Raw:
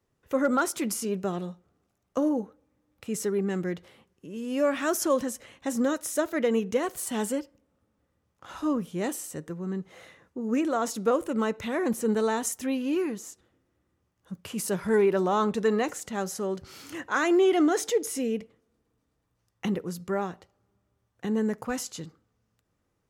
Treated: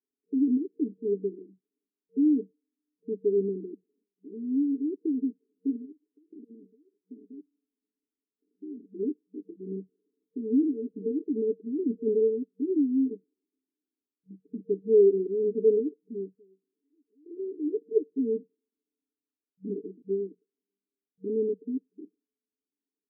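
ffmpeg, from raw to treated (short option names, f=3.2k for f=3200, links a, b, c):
-filter_complex "[0:a]asettb=1/sr,asplit=3[a][b][c];[a]atrim=end=5.764[d];[b]atrim=start=5.76:end=8.84,asetpts=PTS-STARTPTS,afade=t=in:d=0.004:c=qsin,afade=t=out:st=3.076:d=0.004:c=qsin,acompressor=threshold=-41dB:ratio=5:attack=3.2:release=140:knee=1:detection=peak[e];[c]atrim=start=8.836[f];[d][e]acrossfade=d=0.004:c1=hsin:c2=qsin[g];[g][f]acrossfade=d=0.004:c1=qsin:c2=hsin,asplit=5[h][i][j][k][l];[h]atrim=end=12.602[m];[i]atrim=start=12.598:end=13.112,asetpts=PTS-STARTPTS,areverse[n];[j]atrim=start=13.108:end=16.44,asetpts=PTS-STARTPTS,afade=t=out:st=3.062:d=0.27:silence=0.199526[o];[k]atrim=start=16.44:end=17.63,asetpts=PTS-STARTPTS,volume=-14dB[p];[l]atrim=start=17.63,asetpts=PTS-STARTPTS,afade=t=in:d=0.27:silence=0.199526[q];[m][n]acrossfade=d=0.004:c1=hsin:c2=hsin[r];[o][p][q]concat=n=3:v=0:a=1[s];[r][s]acrossfade=d=0.004:c1=hsin:c2=hsin,afwtdn=0.0355,afftfilt=real='re*between(b*sr/4096,190,460)':imag='im*between(b*sr/4096,190,460)':win_size=4096:overlap=0.75,aecho=1:1:7.1:0.78"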